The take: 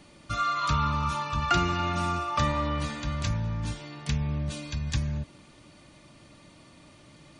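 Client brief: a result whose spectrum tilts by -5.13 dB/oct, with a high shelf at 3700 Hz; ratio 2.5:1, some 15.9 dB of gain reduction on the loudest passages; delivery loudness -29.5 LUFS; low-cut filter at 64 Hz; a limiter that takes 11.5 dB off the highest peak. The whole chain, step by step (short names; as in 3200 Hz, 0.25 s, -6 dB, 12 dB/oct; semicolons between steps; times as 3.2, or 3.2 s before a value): HPF 64 Hz; high shelf 3700 Hz -6 dB; compressor 2.5:1, threshold -46 dBFS; gain +19 dB; limiter -20.5 dBFS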